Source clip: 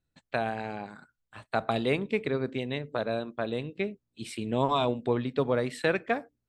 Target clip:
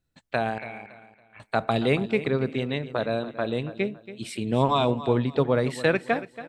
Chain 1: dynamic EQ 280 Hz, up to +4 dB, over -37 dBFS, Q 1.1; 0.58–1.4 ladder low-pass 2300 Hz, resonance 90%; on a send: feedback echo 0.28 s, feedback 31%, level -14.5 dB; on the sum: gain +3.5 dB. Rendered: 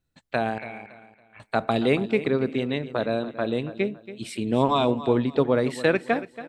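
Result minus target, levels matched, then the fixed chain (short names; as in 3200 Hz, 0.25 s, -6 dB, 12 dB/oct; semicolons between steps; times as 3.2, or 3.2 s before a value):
125 Hz band -3.5 dB
dynamic EQ 130 Hz, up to +4 dB, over -37 dBFS, Q 1.1; 0.58–1.4 ladder low-pass 2300 Hz, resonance 90%; on a send: feedback echo 0.28 s, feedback 31%, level -14.5 dB; on the sum: gain +3.5 dB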